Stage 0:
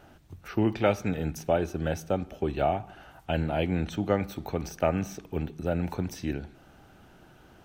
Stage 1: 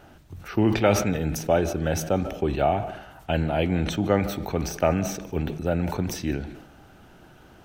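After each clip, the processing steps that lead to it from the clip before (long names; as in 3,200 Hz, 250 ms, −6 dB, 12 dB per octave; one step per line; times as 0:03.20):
convolution reverb RT60 0.80 s, pre-delay 114 ms, DRR 20 dB
level that may fall only so fast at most 71 dB per second
level +3.5 dB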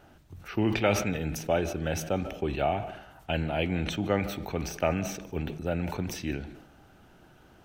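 dynamic equaliser 2,600 Hz, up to +6 dB, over −47 dBFS, Q 1.5
level −5.5 dB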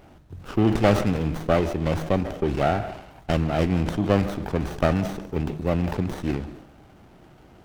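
windowed peak hold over 17 samples
level +6.5 dB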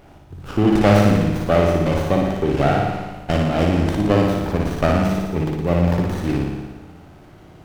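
on a send: flutter between parallel walls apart 9.9 metres, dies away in 1.1 s
on the sum: rectangular room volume 3,400 cubic metres, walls mixed, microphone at 0.31 metres
level +2.5 dB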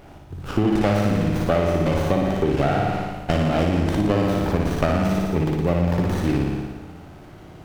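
downward compressor 5 to 1, threshold −18 dBFS, peak gain reduction 9.5 dB
level +2 dB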